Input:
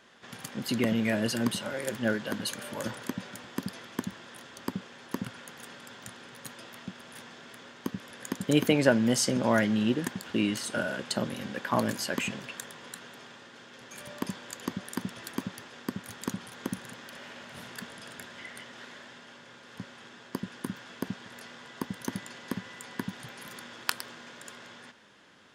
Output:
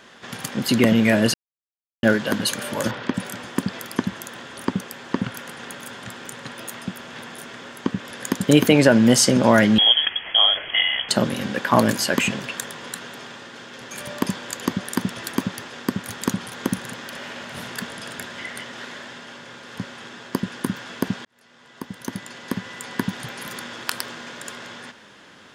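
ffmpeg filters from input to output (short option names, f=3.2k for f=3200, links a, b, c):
-filter_complex "[0:a]asettb=1/sr,asplit=3[a][b][c];[a]atrim=end=2.914[d];[b]atrim=start=2.91:end=8.05,asetpts=PTS-STARTPTS,afade=t=in:d=0.004:c=qsin,afade=t=out:st=5.136:d=0.004:c=qsin,acrossover=split=5000[e][f];[f]adelay=230[g];[e][g]amix=inputs=2:normalize=0,atrim=end_sample=226674[h];[c]atrim=start=8.046[i];[d][h]acrossfade=d=0.004:c1=hsin:c2=qsin[j];[j][i]acrossfade=d=0.004:c1=qsin:c2=hsin,asettb=1/sr,asplit=3[k][l][m];[k]atrim=end=9.784[n];[l]atrim=start=9.78:end=11.09,asetpts=PTS-STARTPTS,afade=t=in:d=0.004:c=qsin,afade=t=out:st=1.306:d=0.004:c=qsin,lowpass=f=3k:t=q:w=0.5098,lowpass=f=3k:t=q:w=0.6013,lowpass=f=3k:t=q:w=0.9,lowpass=f=3k:t=q:w=2.563,afreqshift=-3500[o];[m]atrim=start=11.086[p];[n][o]acrossfade=d=0.004:c1=hsin:c2=qsin[q];[q][p]acrossfade=d=0.004:c1=qsin:c2=hsin,asplit=4[r][s][t][u];[r]atrim=end=1.34,asetpts=PTS-STARTPTS,afade=t=out:st=1.336:d=0.004:c=hsin[v];[s]atrim=start=1.34:end=2.03,asetpts=PTS-STARTPTS,volume=0[w];[t]atrim=start=2.03:end=21.25,asetpts=PTS-STARTPTS,afade=t=in:d=0.004:c=hsin,afade=t=out:st=19.216:d=0.004:c=hsin[x];[u]atrim=start=21.25,asetpts=PTS-STARTPTS,afade=t=in:d=1.81[y];[v][w][x][y]concat=n=4:v=0:a=1,alimiter=level_in=11.5dB:limit=-1dB:release=50:level=0:latency=1,volume=-1dB"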